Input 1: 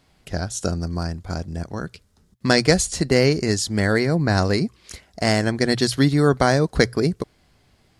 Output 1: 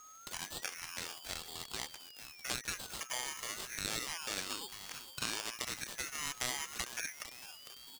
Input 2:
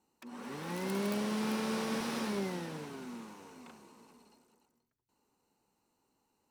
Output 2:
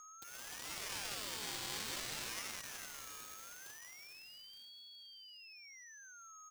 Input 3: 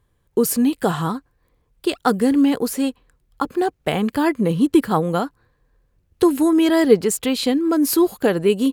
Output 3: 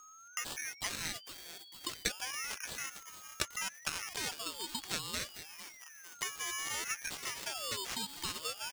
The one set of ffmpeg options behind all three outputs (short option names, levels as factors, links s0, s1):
-filter_complex "[0:a]acompressor=threshold=0.0398:ratio=6,equalizer=f=5900:w=0.53:g=-11,asplit=6[s0][s1][s2][s3][s4][s5];[s1]adelay=451,afreqshift=-42,volume=0.237[s6];[s2]adelay=902,afreqshift=-84,volume=0.114[s7];[s3]adelay=1353,afreqshift=-126,volume=0.0543[s8];[s4]adelay=1804,afreqshift=-168,volume=0.0263[s9];[s5]adelay=2255,afreqshift=-210,volume=0.0126[s10];[s0][s6][s7][s8][s9][s10]amix=inputs=6:normalize=0,acrusher=samples=11:mix=1:aa=0.000001,aderivative,aeval=exprs='val(0)+0.000708*sin(2*PI*3900*n/s)':c=same,acrossover=split=7700[s11][s12];[s12]acompressor=threshold=0.00141:ratio=4:attack=1:release=60[s13];[s11][s13]amix=inputs=2:normalize=0,aeval=exprs='val(0)*sin(2*PI*1600*n/s+1600*0.65/0.31*sin(2*PI*0.31*n/s))':c=same,volume=4.47"